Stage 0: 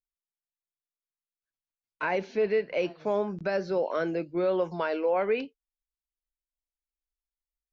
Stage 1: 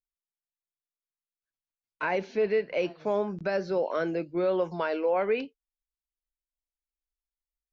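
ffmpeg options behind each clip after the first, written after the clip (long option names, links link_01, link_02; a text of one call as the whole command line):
ffmpeg -i in.wav -af anull out.wav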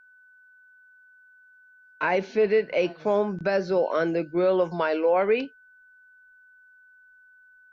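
ffmpeg -i in.wav -af "aeval=exprs='val(0)+0.00141*sin(2*PI*1500*n/s)':channel_layout=same,volume=4.5dB" out.wav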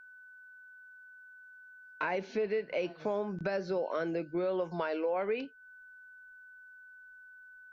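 ffmpeg -i in.wav -af "acompressor=threshold=-37dB:ratio=2.5,volume=1.5dB" out.wav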